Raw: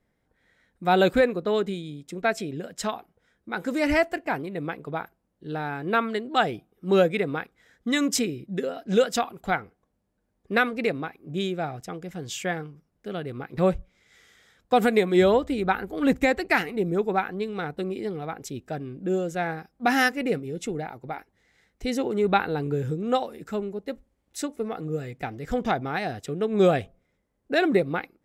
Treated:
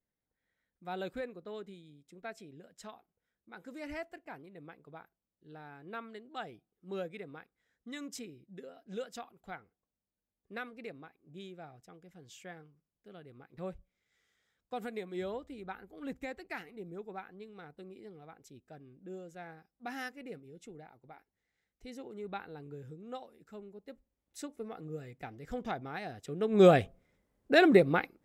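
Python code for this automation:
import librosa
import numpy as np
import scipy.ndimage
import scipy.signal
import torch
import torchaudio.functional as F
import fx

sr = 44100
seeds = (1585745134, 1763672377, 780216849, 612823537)

y = fx.gain(x, sr, db=fx.line((23.46, -19.5), (24.43, -12.0), (26.16, -12.0), (26.67, -0.5)))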